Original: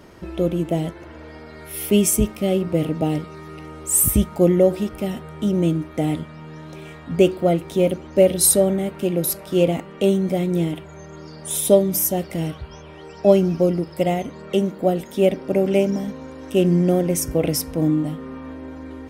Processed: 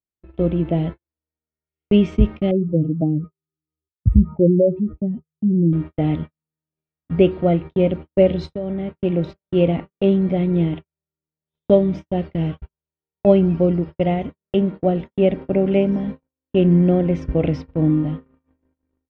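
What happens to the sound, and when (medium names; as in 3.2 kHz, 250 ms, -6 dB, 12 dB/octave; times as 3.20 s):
2.51–5.73 s: spectral contrast enhancement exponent 2.3
8.52–8.95 s: compression 4:1, threshold -24 dBFS
whole clip: inverse Chebyshev low-pass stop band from 9.7 kHz, stop band 60 dB; gate -29 dBFS, range -57 dB; bass shelf 170 Hz +10.5 dB; trim -1.5 dB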